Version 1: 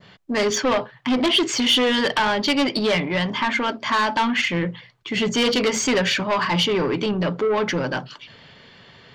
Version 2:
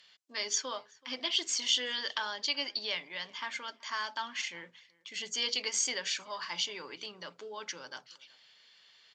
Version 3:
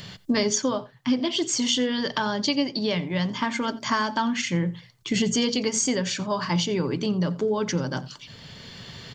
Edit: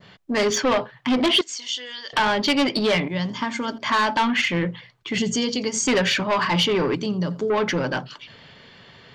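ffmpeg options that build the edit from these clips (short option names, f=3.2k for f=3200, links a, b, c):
-filter_complex "[2:a]asplit=3[a][b][c];[0:a]asplit=5[d][e][f][g][h];[d]atrim=end=1.412[i];[1:a]atrim=start=1.408:end=2.132[j];[e]atrim=start=2.128:end=3.082[k];[a]atrim=start=3.078:end=3.782[l];[f]atrim=start=3.778:end=5.182[m];[b]atrim=start=5.178:end=5.872[n];[g]atrim=start=5.868:end=6.952[o];[c]atrim=start=6.948:end=7.502[p];[h]atrim=start=7.498[q];[i][j]acrossfade=d=0.004:c1=hsin:c2=hsin[r];[r][k]acrossfade=d=0.004:c1=hsin:c2=hsin[s];[s][l]acrossfade=d=0.004:c1=hsin:c2=hsin[t];[t][m]acrossfade=d=0.004:c1=hsin:c2=hsin[u];[u][n]acrossfade=d=0.004:c1=hsin:c2=hsin[v];[v][o]acrossfade=d=0.004:c1=hsin:c2=hsin[w];[w][p]acrossfade=d=0.004:c1=hsin:c2=hsin[x];[x][q]acrossfade=d=0.004:c1=hsin:c2=hsin"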